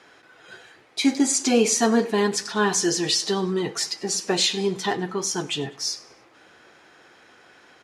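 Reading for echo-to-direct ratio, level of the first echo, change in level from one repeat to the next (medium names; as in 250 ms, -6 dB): -20.0 dB, -21.0 dB, -7.0 dB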